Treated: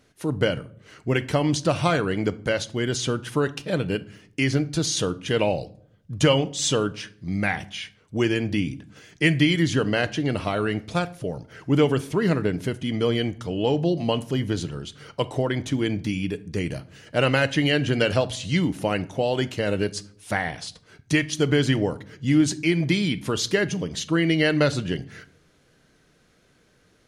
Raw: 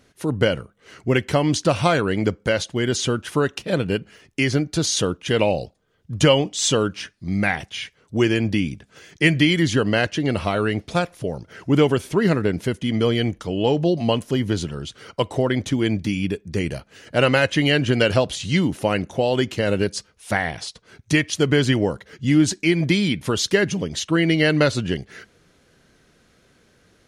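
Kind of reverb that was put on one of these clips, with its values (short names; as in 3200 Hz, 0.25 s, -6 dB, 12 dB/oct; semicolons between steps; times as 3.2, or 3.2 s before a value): shoebox room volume 810 m³, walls furnished, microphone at 0.48 m; gain -3.5 dB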